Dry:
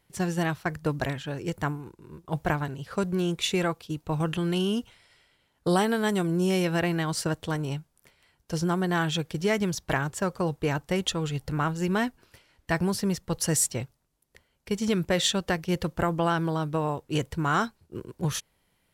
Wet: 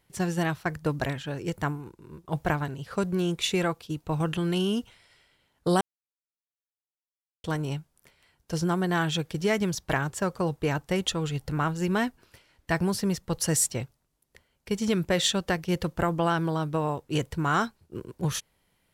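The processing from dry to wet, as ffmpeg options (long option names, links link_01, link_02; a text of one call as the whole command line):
ffmpeg -i in.wav -filter_complex "[0:a]asplit=3[link_01][link_02][link_03];[link_01]atrim=end=5.81,asetpts=PTS-STARTPTS,afade=type=out:start_time=5.806:duration=0.004:curve=hsin[link_04];[link_02]atrim=start=5.81:end=7.44,asetpts=PTS-STARTPTS,volume=0[link_05];[link_03]atrim=start=7.44,asetpts=PTS-STARTPTS,afade=type=in:duration=0.004:curve=hsin[link_06];[link_04][link_05][link_06]concat=n=3:v=0:a=1" out.wav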